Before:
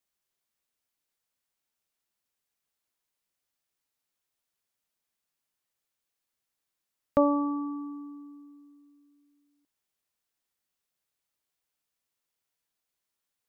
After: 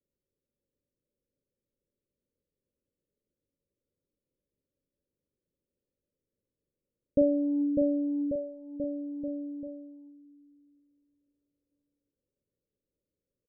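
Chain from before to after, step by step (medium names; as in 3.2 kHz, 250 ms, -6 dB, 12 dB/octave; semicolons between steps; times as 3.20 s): Chebyshev low-pass 590 Hz, order 10; in parallel at 0 dB: compressor with a negative ratio -33 dBFS, ratio -0.5; on the sum: doubling 43 ms -8.5 dB; bouncing-ball echo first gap 600 ms, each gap 0.9×, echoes 5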